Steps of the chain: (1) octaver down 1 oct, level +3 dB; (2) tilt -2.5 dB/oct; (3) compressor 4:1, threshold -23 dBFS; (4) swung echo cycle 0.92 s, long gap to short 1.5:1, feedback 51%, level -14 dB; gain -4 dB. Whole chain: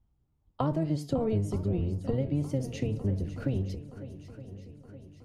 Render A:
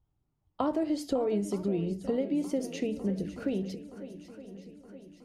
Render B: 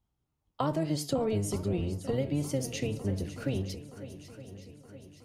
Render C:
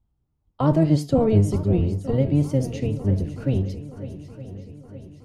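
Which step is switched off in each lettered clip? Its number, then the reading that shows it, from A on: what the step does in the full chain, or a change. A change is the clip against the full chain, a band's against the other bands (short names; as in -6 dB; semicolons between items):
1, 125 Hz band -13.0 dB; 2, 8 kHz band +10.0 dB; 3, mean gain reduction 7.0 dB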